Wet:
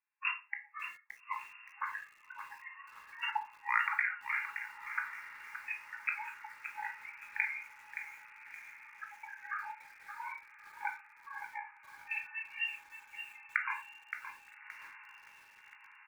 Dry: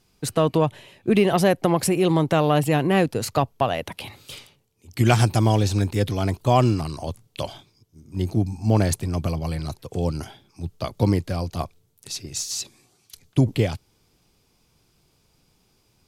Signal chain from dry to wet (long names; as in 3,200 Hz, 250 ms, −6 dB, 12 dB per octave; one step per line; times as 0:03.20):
pitch shifter −6.5 semitones
compressor whose output falls as the input rises −26 dBFS, ratio −0.5
noise reduction from a noise print of the clip's start 27 dB
linear-phase brick-wall band-pass 820–2,800 Hz
feedback delay with all-pass diffusion 1,249 ms, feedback 64%, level −15 dB
convolution reverb RT60 0.35 s, pre-delay 15 ms, DRR 3.5 dB
feedback echo at a low word length 571 ms, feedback 35%, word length 9 bits, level −9 dB